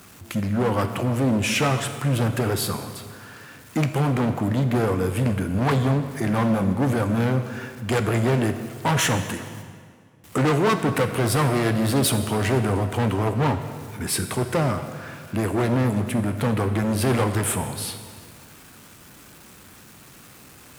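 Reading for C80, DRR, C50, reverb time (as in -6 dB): 10.0 dB, 8.0 dB, 9.0 dB, 2.0 s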